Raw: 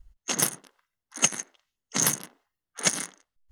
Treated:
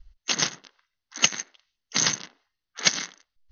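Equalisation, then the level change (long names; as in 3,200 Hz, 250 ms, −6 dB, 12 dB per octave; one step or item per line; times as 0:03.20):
Chebyshev low-pass with heavy ripple 6,300 Hz, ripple 3 dB
low-shelf EQ 62 Hz +7 dB
parametric band 3,900 Hz +10.5 dB 1.8 octaves
0.0 dB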